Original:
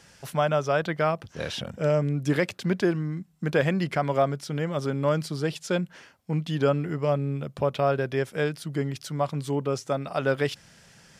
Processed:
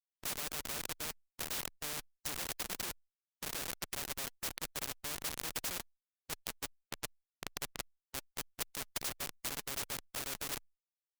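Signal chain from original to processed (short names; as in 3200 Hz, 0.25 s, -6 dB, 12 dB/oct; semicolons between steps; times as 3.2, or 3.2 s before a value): spectral trails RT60 0.65 s; pre-emphasis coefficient 0.9; expander -57 dBFS; bell 480 Hz +4 dB 0.78 oct; notch 2200 Hz, Q 8; 6.44–8.72 compressor 16:1, threshold -41 dBFS, peak gain reduction 11 dB; transient shaper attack +12 dB, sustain -12 dB; Schmitt trigger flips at -34 dBFS; phaser 1.3 Hz, delay 4.9 ms, feedback 32%; one-sided clip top -35.5 dBFS, bottom -34 dBFS; spectral compressor 4:1; gain +11.5 dB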